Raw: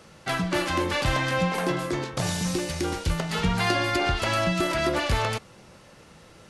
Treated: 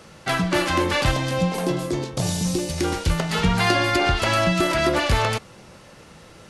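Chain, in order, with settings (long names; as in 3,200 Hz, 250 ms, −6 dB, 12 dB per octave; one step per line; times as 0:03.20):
0:01.11–0:02.78: parametric band 1,600 Hz −10 dB 1.7 octaves
level +4.5 dB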